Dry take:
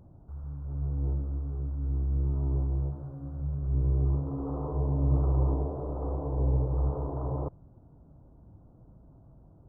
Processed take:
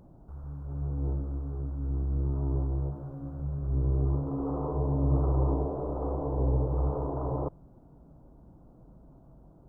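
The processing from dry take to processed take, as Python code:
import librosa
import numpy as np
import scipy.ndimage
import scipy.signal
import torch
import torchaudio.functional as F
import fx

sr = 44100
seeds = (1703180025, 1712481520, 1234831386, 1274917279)

y = fx.peak_eq(x, sr, hz=92.0, db=-13.0, octaves=0.67)
y = y * 10.0 ** (3.5 / 20.0)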